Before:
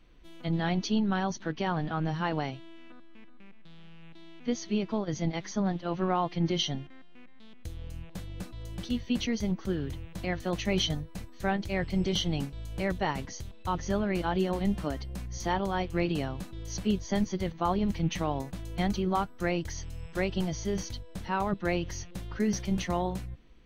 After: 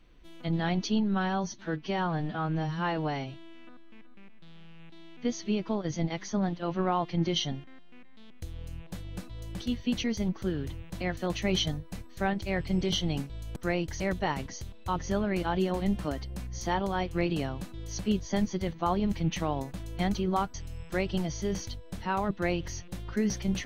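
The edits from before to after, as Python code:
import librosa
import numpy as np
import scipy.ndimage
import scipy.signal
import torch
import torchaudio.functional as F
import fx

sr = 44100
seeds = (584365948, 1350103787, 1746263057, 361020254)

y = fx.edit(x, sr, fx.stretch_span(start_s=1.03, length_s=1.54, factor=1.5),
    fx.move(start_s=19.33, length_s=0.44, to_s=12.79), tone=tone)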